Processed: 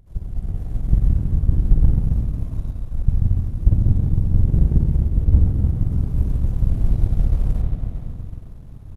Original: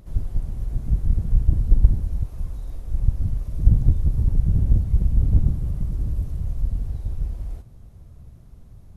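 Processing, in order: spring tank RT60 3.3 s, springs 45/57 ms, chirp 40 ms, DRR -3 dB; power-law curve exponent 1.4; frequency-shifting echo 0.129 s, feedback 35%, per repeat +65 Hz, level -16 dB; AGC gain up to 14 dB; pre-echo 0.258 s -22 dB; gain -1 dB

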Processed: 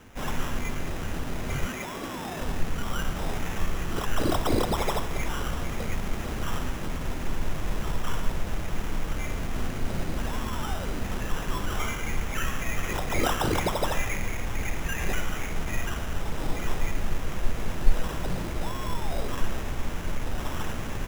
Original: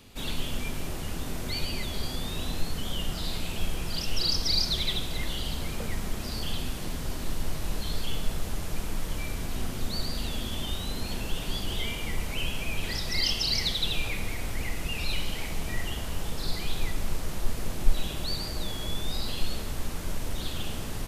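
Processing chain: 1.67–2.4 HPF 310 Hz -> 140 Hz 12 dB/oct; sample-and-hold 10×; gain +2 dB

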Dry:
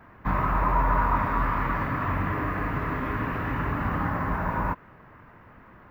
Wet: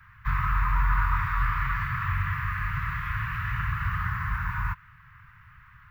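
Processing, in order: inverse Chebyshev band-stop 250–660 Hz, stop band 50 dB; gain +2 dB

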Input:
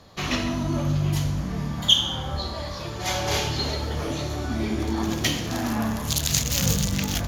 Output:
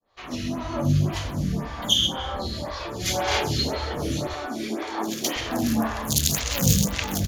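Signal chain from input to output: opening faded in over 0.84 s; 4.33–5.36 HPF 350 Hz 12 dB/oct; echo 0.132 s -12 dB; photocell phaser 1.9 Hz; gain +4.5 dB

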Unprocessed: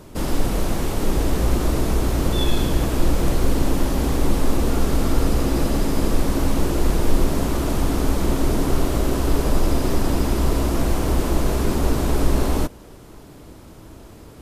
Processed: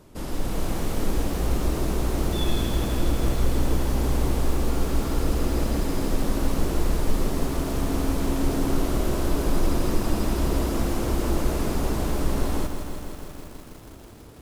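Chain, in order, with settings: AGC gain up to 5.5 dB; lo-fi delay 0.162 s, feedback 80%, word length 6-bit, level -8 dB; gain -9 dB

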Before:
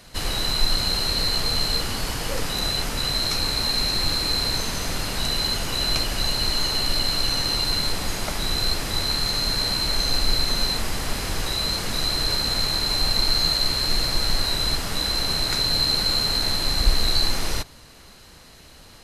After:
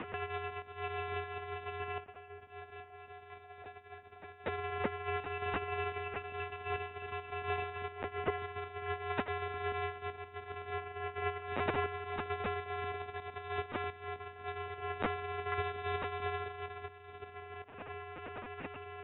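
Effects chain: tilt -3.5 dB/oct; limiter -1.5 dBFS, peak gain reduction 10 dB; compressor 6:1, threshold -18 dBFS, peak gain reduction 13.5 dB; 1.98–4.47 resonator 920 Hz, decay 0.17 s, harmonics all, mix 80%; LPC vocoder at 8 kHz pitch kept; mistuned SSB -230 Hz 460–3100 Hz; gain +11.5 dB

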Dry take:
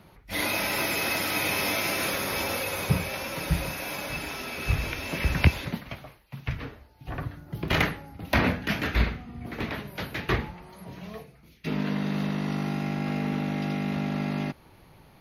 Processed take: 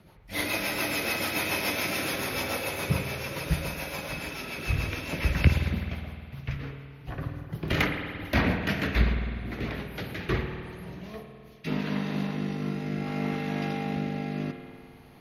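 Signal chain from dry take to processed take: rotary speaker horn 7 Hz, later 0.6 Hz, at 10.54; spring tank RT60 2.2 s, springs 51 ms, chirp 20 ms, DRR 5 dB

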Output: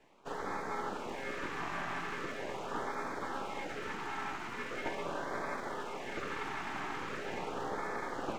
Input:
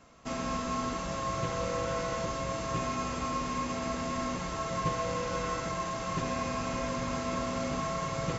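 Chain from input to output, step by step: full-wave rectifier; LFO notch sine 0.41 Hz 480–2900 Hz; three-band isolator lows -13 dB, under 170 Hz, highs -14 dB, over 2800 Hz; gain +1 dB

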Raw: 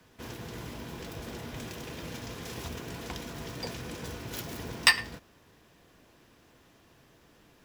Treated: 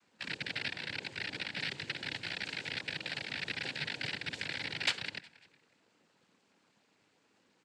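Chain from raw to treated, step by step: rattling part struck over -41 dBFS, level -10 dBFS; envelope flanger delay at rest 4.3 ms; AM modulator 100 Hz, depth 40%; frequency-shifting echo 0.183 s, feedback 48%, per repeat -120 Hz, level -21 dB; noise vocoder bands 8; gain -5.5 dB

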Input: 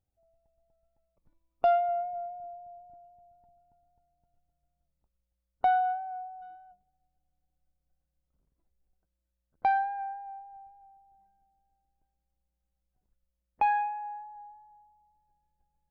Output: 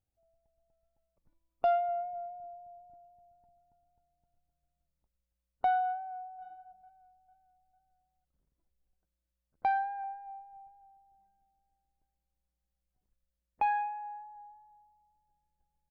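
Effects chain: 5.93–6.44 echo throw 0.45 s, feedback 45%, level -14.5 dB; 10.03–10.68 comb 6.7 ms, depth 55%; gain -3.5 dB

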